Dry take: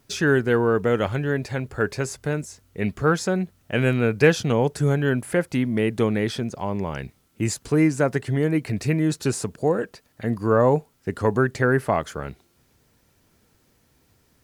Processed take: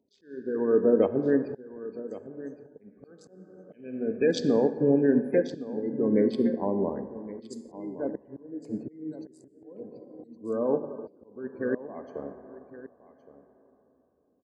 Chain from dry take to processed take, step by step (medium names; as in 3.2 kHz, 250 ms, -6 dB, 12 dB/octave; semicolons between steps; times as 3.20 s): local Wiener filter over 25 samples; spectral gate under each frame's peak -20 dB strong; graphic EQ 125/250/500/4000 Hz -11/+11/+6/+11 dB; peak limiter -10.5 dBFS, peak gain reduction 11.5 dB; treble shelf 5.2 kHz +9 dB; plate-style reverb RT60 2.9 s, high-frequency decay 0.25×, pre-delay 0 ms, DRR 7.5 dB; slow attack 648 ms; comb of notches 1.4 kHz; delay 1116 ms -11 dB; upward expansion 1.5:1, over -40 dBFS; trim -1.5 dB